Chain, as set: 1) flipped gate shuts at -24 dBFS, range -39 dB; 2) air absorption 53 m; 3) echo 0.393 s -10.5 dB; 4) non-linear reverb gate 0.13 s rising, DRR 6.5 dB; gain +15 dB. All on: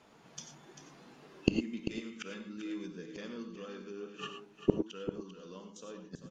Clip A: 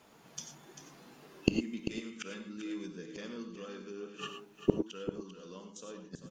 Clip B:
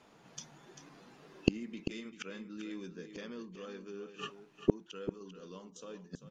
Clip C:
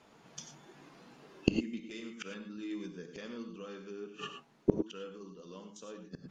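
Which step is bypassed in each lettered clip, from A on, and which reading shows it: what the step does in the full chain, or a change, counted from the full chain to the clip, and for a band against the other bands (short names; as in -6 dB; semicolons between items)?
2, momentary loudness spread change -2 LU; 4, echo-to-direct -5.0 dB to -10.5 dB; 3, echo-to-direct -5.0 dB to -6.5 dB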